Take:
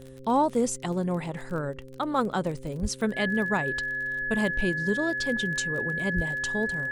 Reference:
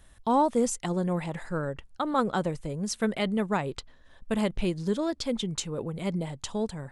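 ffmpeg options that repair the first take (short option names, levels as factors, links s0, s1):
-filter_complex "[0:a]adeclick=t=4,bandreject=f=131.7:t=h:w=4,bandreject=f=263.4:t=h:w=4,bandreject=f=395.1:t=h:w=4,bandreject=f=526.8:t=h:w=4,bandreject=f=1700:w=30,asplit=3[s0][s1][s2];[s0]afade=t=out:st=2.81:d=0.02[s3];[s1]highpass=f=140:w=0.5412,highpass=f=140:w=1.3066,afade=t=in:st=2.81:d=0.02,afade=t=out:st=2.93:d=0.02[s4];[s2]afade=t=in:st=2.93:d=0.02[s5];[s3][s4][s5]amix=inputs=3:normalize=0,asplit=3[s6][s7][s8];[s6]afade=t=out:st=6.15:d=0.02[s9];[s7]highpass=f=140:w=0.5412,highpass=f=140:w=1.3066,afade=t=in:st=6.15:d=0.02,afade=t=out:st=6.27:d=0.02[s10];[s8]afade=t=in:st=6.27:d=0.02[s11];[s9][s10][s11]amix=inputs=3:normalize=0"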